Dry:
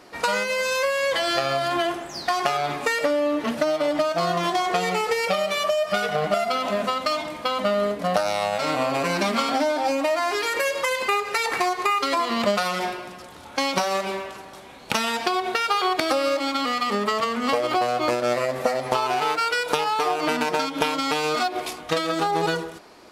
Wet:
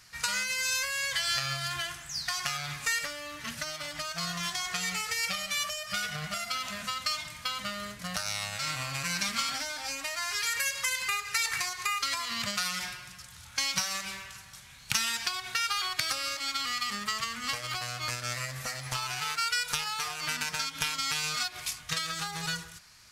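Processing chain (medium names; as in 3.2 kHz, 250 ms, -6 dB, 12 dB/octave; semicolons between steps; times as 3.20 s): FFT filter 130 Hz 0 dB, 330 Hz -29 dB, 720 Hz -22 dB, 1.6 kHz -5 dB, 3.5 kHz -4 dB, 6.3 kHz +4 dB, 9.3 kHz +2 dB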